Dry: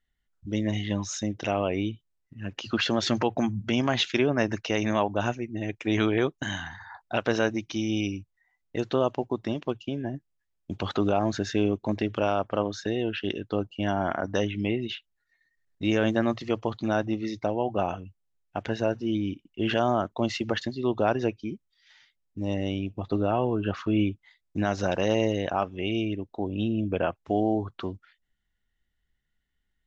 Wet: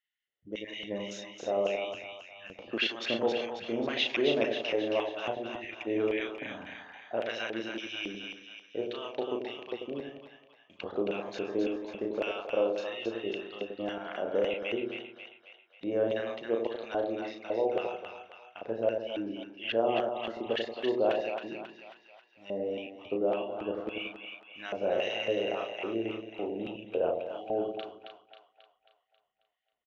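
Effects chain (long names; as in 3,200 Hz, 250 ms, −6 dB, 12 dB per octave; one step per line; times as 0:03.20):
double-tracking delay 35 ms −4 dB
auto-filter band-pass square 1.8 Hz 500–2,600 Hz
echo with a time of its own for lows and highs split 780 Hz, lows 90 ms, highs 270 ms, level −5 dB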